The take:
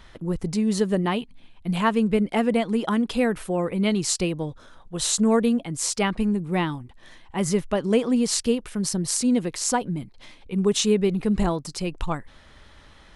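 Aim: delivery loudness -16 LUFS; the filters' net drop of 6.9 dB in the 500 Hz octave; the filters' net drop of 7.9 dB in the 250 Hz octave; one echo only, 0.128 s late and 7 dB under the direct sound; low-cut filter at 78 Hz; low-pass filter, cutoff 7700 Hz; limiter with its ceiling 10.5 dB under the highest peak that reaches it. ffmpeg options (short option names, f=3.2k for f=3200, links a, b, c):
-af "highpass=78,lowpass=7.7k,equalizer=f=250:t=o:g=-9,equalizer=f=500:t=o:g=-5.5,alimiter=limit=-19.5dB:level=0:latency=1,aecho=1:1:128:0.447,volume=14dB"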